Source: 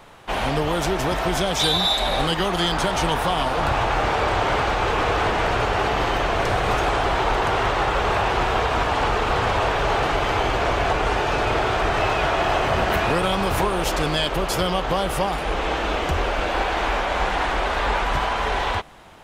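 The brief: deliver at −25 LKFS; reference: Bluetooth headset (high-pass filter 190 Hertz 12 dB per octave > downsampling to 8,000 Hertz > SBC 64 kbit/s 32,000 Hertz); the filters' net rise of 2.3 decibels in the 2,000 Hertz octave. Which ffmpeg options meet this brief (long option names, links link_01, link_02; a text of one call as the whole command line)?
ffmpeg -i in.wav -af "highpass=190,equalizer=frequency=2000:width_type=o:gain=3,aresample=8000,aresample=44100,volume=-3.5dB" -ar 32000 -c:a sbc -b:a 64k out.sbc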